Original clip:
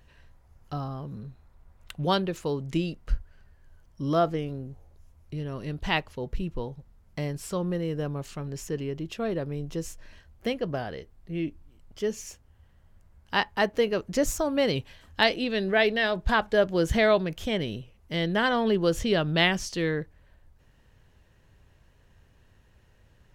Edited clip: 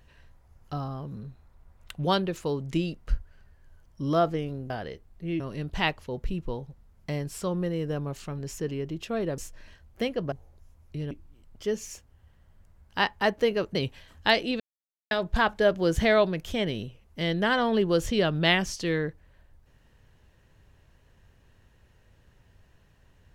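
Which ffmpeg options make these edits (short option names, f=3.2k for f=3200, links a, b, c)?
-filter_complex "[0:a]asplit=9[a][b][c][d][e][f][g][h][i];[a]atrim=end=4.702[j];[b]atrim=start=10.768:end=11.472[k];[c]atrim=start=5.488:end=9.472[l];[d]atrim=start=9.828:end=10.772[m];[e]atrim=start=4.698:end=5.492[n];[f]atrim=start=11.468:end=14.112[o];[g]atrim=start=14.678:end=15.53,asetpts=PTS-STARTPTS,afade=t=out:st=0.848:d=0.004:c=hsin[p];[h]atrim=start=15.53:end=16.04,asetpts=PTS-STARTPTS,volume=0[q];[i]atrim=start=16.04,asetpts=PTS-STARTPTS,afade=t=in:d=0.004:c=hsin[r];[j][k]acrossfade=d=0.004:c1=hsin:c2=hsin[s];[s][l]acrossfade=d=0.004:c1=hsin:c2=hsin[t];[t][m]acrossfade=d=0.004:c1=hsin:c2=hsin[u];[u][n]acrossfade=d=0.004:c1=hsin:c2=hsin[v];[v][o]acrossfade=d=0.004:c1=hsin:c2=hsin[w];[p][q][r]concat=n=3:v=0:a=1[x];[w][x]acrossfade=d=0.004:c1=hsin:c2=hsin"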